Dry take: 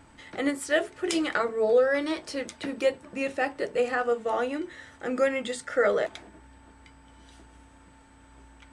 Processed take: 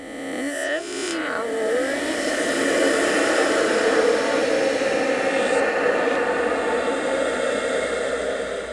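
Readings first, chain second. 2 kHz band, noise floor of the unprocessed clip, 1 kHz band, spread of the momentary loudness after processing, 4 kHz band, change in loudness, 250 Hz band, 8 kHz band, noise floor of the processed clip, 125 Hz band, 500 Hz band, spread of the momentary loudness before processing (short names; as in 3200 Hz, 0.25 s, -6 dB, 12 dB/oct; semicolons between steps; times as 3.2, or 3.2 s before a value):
+9.5 dB, -55 dBFS, +8.0 dB, 6 LU, +10.5 dB, +6.0 dB, +7.0 dB, +11.5 dB, -30 dBFS, n/a, +6.5 dB, 12 LU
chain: spectral swells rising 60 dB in 1.58 s; auto swell 0.289 s; in parallel at 0 dB: compressor, threshold -32 dBFS, peak gain reduction 15 dB; on the sum: bloom reverb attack 2.41 s, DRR -6.5 dB; gain -5.5 dB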